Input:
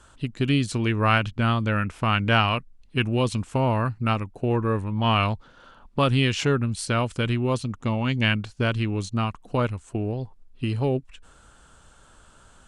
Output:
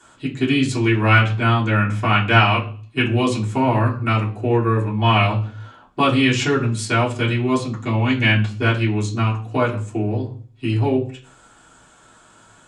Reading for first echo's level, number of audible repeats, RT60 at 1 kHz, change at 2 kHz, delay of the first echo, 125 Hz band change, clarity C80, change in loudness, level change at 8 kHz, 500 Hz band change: no echo audible, no echo audible, 0.40 s, +7.5 dB, no echo audible, +5.5 dB, 16.5 dB, +5.5 dB, +4.5 dB, +4.5 dB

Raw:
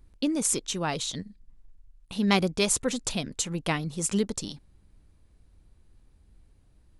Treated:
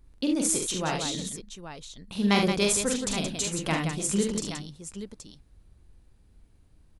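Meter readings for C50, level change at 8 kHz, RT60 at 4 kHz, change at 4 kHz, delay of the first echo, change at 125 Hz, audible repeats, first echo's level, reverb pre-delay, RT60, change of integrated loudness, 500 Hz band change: no reverb audible, +1.0 dB, no reverb audible, +1.0 dB, 44 ms, +1.0 dB, 3, −4.0 dB, no reverb audible, no reverb audible, +1.0 dB, +1.5 dB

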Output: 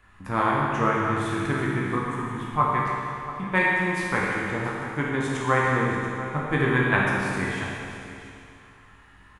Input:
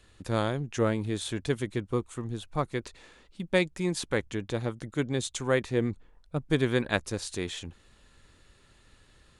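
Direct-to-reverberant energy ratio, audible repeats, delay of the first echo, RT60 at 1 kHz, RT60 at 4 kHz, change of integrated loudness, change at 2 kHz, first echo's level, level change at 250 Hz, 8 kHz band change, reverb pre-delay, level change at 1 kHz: −5.0 dB, 1, 683 ms, 2.7 s, 2.6 s, +5.5 dB, +11.5 dB, −14.0 dB, +4.0 dB, −3.5 dB, 15 ms, +14.0 dB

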